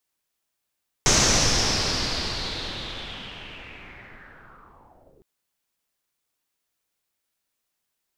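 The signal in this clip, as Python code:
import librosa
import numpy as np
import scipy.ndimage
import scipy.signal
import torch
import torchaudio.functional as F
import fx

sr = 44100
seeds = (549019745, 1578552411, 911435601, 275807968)

y = fx.riser_noise(sr, seeds[0], length_s=4.16, colour='pink', kind='lowpass', start_hz=6300.0, end_hz=380.0, q=4.5, swell_db=-39, law='linear')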